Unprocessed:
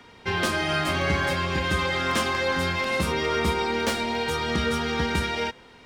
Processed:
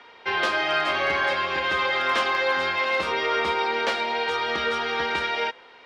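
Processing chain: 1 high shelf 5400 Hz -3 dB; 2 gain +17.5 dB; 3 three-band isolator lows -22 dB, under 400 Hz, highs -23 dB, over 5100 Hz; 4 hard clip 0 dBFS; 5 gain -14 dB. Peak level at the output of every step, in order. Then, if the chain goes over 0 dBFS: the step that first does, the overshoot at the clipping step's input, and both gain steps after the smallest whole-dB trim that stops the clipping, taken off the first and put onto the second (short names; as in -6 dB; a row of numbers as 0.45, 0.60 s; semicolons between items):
-11.5, +6.0, +4.0, 0.0, -14.0 dBFS; step 2, 4.0 dB; step 2 +13.5 dB, step 5 -10 dB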